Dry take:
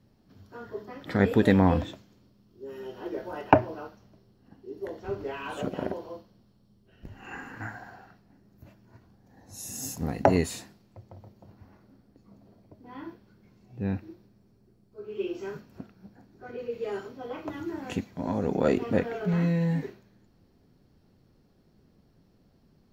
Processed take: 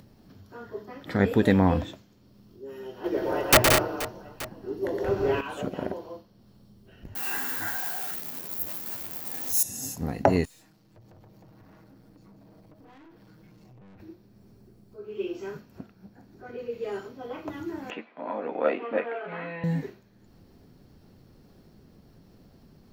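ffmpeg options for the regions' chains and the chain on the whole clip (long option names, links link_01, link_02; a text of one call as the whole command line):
ffmpeg -i in.wav -filter_complex "[0:a]asettb=1/sr,asplit=3[link_01][link_02][link_03];[link_01]atrim=end=3.044[link_04];[link_02]atrim=start=3.04:end=5.41,asetpts=PTS-STARTPTS,afade=type=in:duration=0.004:curve=qsin,afade=type=out:start_time=2.366:duration=0.004:curve=qsin,acontrast=62,aeval=exprs='(mod(2.82*val(0)+1,2)-1)/2.82':channel_layout=same,aecho=1:1:116|177|214|478|876:0.562|0.531|0.398|0.15|0.106,atrim=end_sample=104517[link_05];[link_03]atrim=start=5.406[link_06];[link_04][link_05]acrossfade=duration=0.004:curve1=hsin:curve2=qsin[link_07];[link_07][link_06]acrossfade=duration=0.004:curve1=qsin:curve2=hsin,asettb=1/sr,asplit=3[link_08][link_09][link_10];[link_08]atrim=end=7.154[link_11];[link_09]atrim=start=7.15:end=9.63,asetpts=PTS-STARTPTS,afade=type=in:duration=0.004:curve=qsin,afade=type=out:start_time=2.476:duration=0.004:curve=qsin,aeval=exprs='val(0)+0.5*0.0112*sgn(val(0))':channel_layout=same,aemphasis=mode=production:type=bsi,asplit=2[link_12][link_13];[link_13]adelay=12,volume=-4dB[link_14];[link_12][link_14]amix=inputs=2:normalize=0,atrim=end_sample=109368[link_15];[link_10]atrim=start=9.626[link_16];[link_11][link_15]acrossfade=duration=0.004:curve1=hsin:curve2=qsin[link_17];[link_17][link_16]acrossfade=duration=0.004:curve1=qsin:curve2=hsin,asettb=1/sr,asplit=3[link_18][link_19][link_20];[link_18]atrim=end=10.454[link_21];[link_19]atrim=start=10.45:end=14,asetpts=PTS-STARTPTS,afade=type=in:duration=0.004:curve=qsin,afade=type=out:start_time=3.546:duration=0.004:curve=qsin,aecho=1:1:6.4:0.83,atrim=end_sample=156555,acompressor=threshold=-52dB:ratio=2.5:attack=3.2:release=140:knee=1:detection=peak,aeval=exprs='(tanh(562*val(0)+0.35)-tanh(0.35))/562':channel_layout=same[link_22];[link_20]atrim=start=13.996[link_23];[link_21][link_22]acrossfade=duration=0.004:curve1=hsin:curve2=qsin[link_24];[link_24][link_23]acrossfade=duration=0.004:curve1=qsin:curve2=hsin,asettb=1/sr,asplit=3[link_25][link_26][link_27];[link_25]atrim=end=17.904[link_28];[link_26]atrim=start=17.9:end=19.64,asetpts=PTS-STARTPTS,afade=type=in:duration=0.004:curve=qsin,afade=type=out:start_time=1.736:duration=0.004:curve=qsin,highpass=frequency=310:width=0.5412,highpass=frequency=310:width=1.3066,equalizer=frequency=370:width_type=q:width=4:gain=-9,equalizer=frequency=1200:width_type=q:width=4:gain=4,equalizer=frequency=2400:width_type=q:width=4:gain=3,lowpass=frequency=3000:width=0.5412,lowpass=frequency=3000:width=1.3066,asplit=2[link_29][link_30];[link_30]adelay=13,volume=-5dB[link_31];[link_29][link_31]amix=inputs=2:normalize=0,atrim=end_sample=76734[link_32];[link_27]atrim=start=19.636[link_33];[link_28][link_32]acrossfade=duration=0.004:curve1=hsin:curve2=qsin[link_34];[link_34][link_33]acrossfade=duration=0.004:curve1=qsin:curve2=hsin,acompressor=mode=upward:threshold=-45dB:ratio=2.5,highshelf=frequency=12000:gain=5.5" out.wav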